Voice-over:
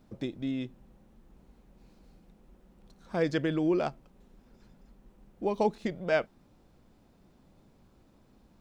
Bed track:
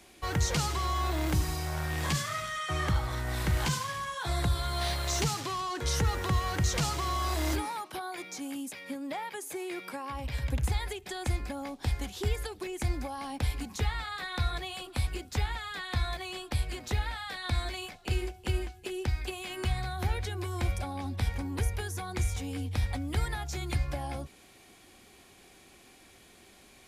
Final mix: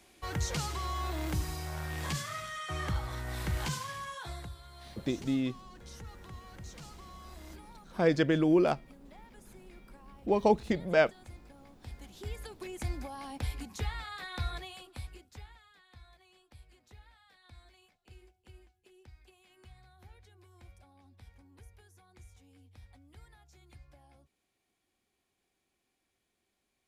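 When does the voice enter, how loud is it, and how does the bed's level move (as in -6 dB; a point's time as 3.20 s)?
4.85 s, +2.5 dB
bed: 4.15 s -5 dB
4.58 s -19.5 dB
11.62 s -19.5 dB
12.67 s -5 dB
14.55 s -5 dB
15.81 s -25 dB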